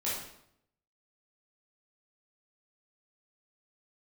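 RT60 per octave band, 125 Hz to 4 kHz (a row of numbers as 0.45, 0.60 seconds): 0.90, 0.80, 0.75, 0.70, 0.65, 0.60 seconds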